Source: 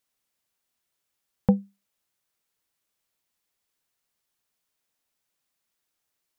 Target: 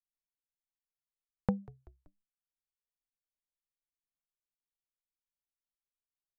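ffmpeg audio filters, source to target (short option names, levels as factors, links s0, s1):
-filter_complex "[0:a]anlmdn=0.0158,acompressor=threshold=0.0631:ratio=6,asplit=4[s0][s1][s2][s3];[s1]adelay=191,afreqshift=-67,volume=0.0794[s4];[s2]adelay=382,afreqshift=-134,volume=0.0389[s5];[s3]adelay=573,afreqshift=-201,volume=0.0191[s6];[s0][s4][s5][s6]amix=inputs=4:normalize=0,volume=0.75"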